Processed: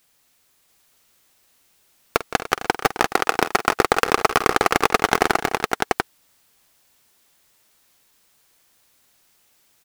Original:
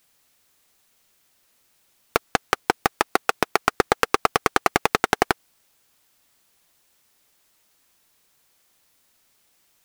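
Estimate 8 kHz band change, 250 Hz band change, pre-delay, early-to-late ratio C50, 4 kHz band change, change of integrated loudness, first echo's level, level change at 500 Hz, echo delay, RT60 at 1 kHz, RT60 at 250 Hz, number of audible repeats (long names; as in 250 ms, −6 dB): +3.0 dB, +3.0 dB, no reverb audible, no reverb audible, +3.0 dB, +2.5 dB, −15.0 dB, +3.0 dB, 47 ms, no reverb audible, no reverb audible, 6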